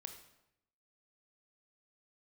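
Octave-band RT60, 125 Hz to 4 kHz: 1.0 s, 0.90 s, 0.85 s, 0.80 s, 0.75 s, 0.65 s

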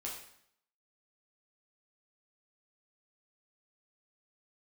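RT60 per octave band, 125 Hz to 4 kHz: 0.70 s, 0.75 s, 0.65 s, 0.70 s, 0.65 s, 0.65 s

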